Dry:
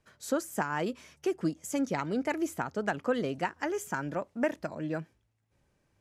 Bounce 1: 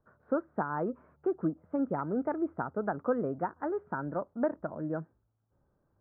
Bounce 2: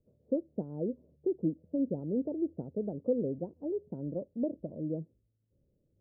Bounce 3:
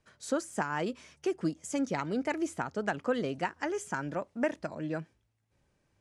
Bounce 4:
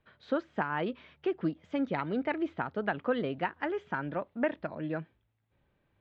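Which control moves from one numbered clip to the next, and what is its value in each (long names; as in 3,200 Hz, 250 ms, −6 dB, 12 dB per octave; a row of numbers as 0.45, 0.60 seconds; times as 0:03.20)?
elliptic low-pass filter, frequency: 1,400, 540, 10,000, 3,700 Hertz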